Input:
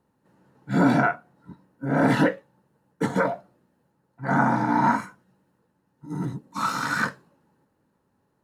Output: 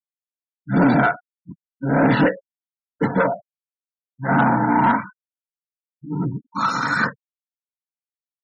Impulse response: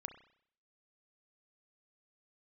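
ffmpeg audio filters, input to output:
-af "asoftclip=type=tanh:threshold=-15dB,afftfilt=real='re*gte(hypot(re,im),0.02)':imag='im*gte(hypot(re,im),0.02)':win_size=1024:overlap=0.75,volume=6dB"

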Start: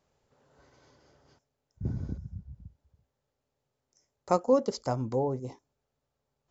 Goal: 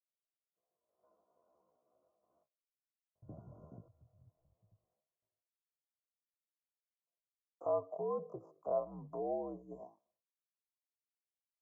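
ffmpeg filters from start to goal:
ffmpeg -i in.wav -filter_complex "[0:a]agate=range=-33dB:threshold=-55dB:ratio=3:detection=peak,lowshelf=frequency=130:width_type=q:width=3:gain=-11,acrossover=split=280|2400[link_01][link_02][link_03];[link_03]acompressor=threshold=-59dB:ratio=6[link_04];[link_01][link_02][link_04]amix=inputs=3:normalize=0,alimiter=limit=-23dB:level=0:latency=1:release=123,dynaudnorm=framelen=200:gausssize=9:maxgain=3dB,atempo=0.56,asplit=3[link_05][link_06][link_07];[link_05]bandpass=frequency=730:width_type=q:width=8,volume=0dB[link_08];[link_06]bandpass=frequency=1090:width_type=q:width=8,volume=-6dB[link_09];[link_07]bandpass=frequency=2440:width_type=q:width=8,volume=-9dB[link_10];[link_08][link_09][link_10]amix=inputs=3:normalize=0,afreqshift=-71,asuperstop=centerf=3000:order=8:qfactor=0.56,volume=3dB" out.wav

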